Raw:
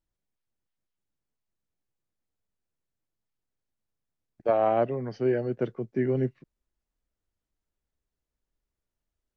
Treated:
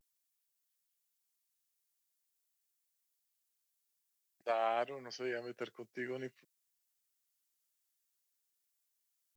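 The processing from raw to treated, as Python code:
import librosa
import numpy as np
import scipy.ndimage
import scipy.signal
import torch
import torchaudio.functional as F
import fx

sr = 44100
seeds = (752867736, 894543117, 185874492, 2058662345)

y = np.diff(x, prepend=0.0)
y = fx.vibrato(y, sr, rate_hz=0.48, depth_cents=53.0)
y = y * 10.0 ** (10.0 / 20.0)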